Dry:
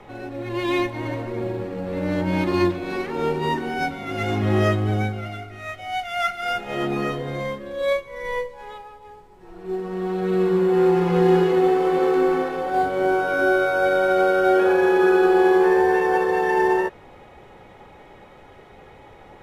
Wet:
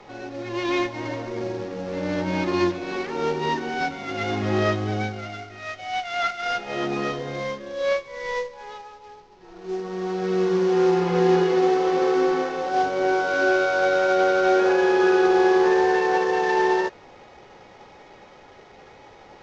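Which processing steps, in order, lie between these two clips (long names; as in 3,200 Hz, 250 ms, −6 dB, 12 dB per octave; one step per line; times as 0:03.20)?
variable-slope delta modulation 32 kbit/s
low-shelf EQ 160 Hz −8.5 dB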